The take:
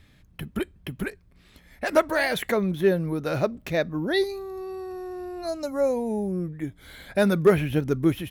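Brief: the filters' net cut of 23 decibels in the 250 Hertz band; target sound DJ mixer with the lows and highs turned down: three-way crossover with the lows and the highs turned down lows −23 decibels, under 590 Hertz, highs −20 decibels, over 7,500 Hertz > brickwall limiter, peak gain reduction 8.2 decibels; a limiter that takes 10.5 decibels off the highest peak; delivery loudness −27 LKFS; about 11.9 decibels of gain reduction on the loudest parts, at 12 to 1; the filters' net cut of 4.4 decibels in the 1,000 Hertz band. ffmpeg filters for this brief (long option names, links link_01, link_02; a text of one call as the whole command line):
ffmpeg -i in.wav -filter_complex "[0:a]equalizer=frequency=250:width_type=o:gain=-8,equalizer=frequency=1000:width_type=o:gain=-4,acompressor=threshold=-27dB:ratio=12,alimiter=level_in=4dB:limit=-24dB:level=0:latency=1,volume=-4dB,acrossover=split=590 7500:gain=0.0708 1 0.1[link_01][link_02][link_03];[link_01][link_02][link_03]amix=inputs=3:normalize=0,volume=19.5dB,alimiter=limit=-16dB:level=0:latency=1" out.wav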